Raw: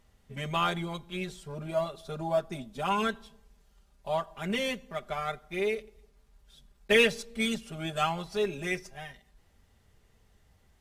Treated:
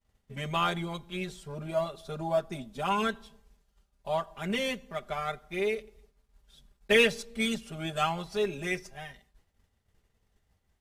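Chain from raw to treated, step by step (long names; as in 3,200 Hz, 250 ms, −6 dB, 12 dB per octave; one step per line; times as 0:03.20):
downward expander −55 dBFS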